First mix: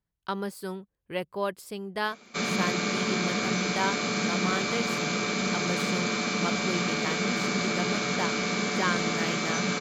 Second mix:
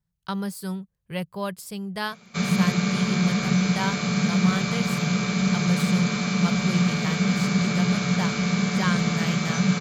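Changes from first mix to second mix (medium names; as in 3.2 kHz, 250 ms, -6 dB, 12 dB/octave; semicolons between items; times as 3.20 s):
speech: add tone controls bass -3 dB, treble +7 dB; master: add resonant low shelf 220 Hz +7.5 dB, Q 3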